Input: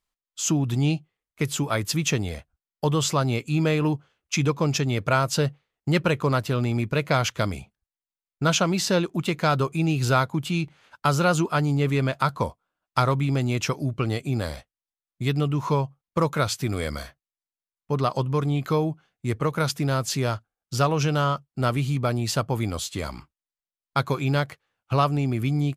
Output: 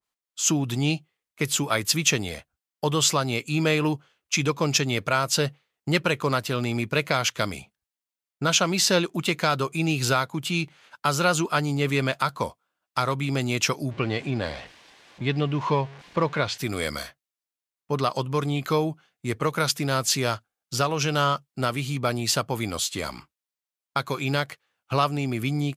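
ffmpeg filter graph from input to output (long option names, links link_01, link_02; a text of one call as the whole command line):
ffmpeg -i in.wav -filter_complex "[0:a]asettb=1/sr,asplit=3[link_01][link_02][link_03];[link_01]atrim=end=13.914[link_04];[link_02]atrim=start=13.91:end=16.58,asetpts=PTS-STARTPTS,afade=type=in:duration=0.004:curve=qsin,afade=type=out:start_time=2.666:duration=0.004:curve=qsin,aeval=exprs='val(0)+0.5*0.015*sgn(val(0))':channel_layout=same,lowpass=3300,bandreject=frequency=1300:width=8.7[link_05];[link_03]atrim=start=16.576[link_06];[link_04][link_05]acrossfade=duration=0.004:curve1=hsin:curve2=qsin[link_07];[link_07][link_06]acrossfade=duration=0.004:curve1=qsin:curve2=hsin,highpass=frequency=190:poles=1,alimiter=limit=-12dB:level=0:latency=1:release=382,adynamicequalizer=threshold=0.0141:dfrequency=1600:dqfactor=0.7:tfrequency=1600:tqfactor=0.7:attack=5:release=100:ratio=0.375:range=2.5:mode=boostabove:tftype=highshelf,volume=1dB" out.wav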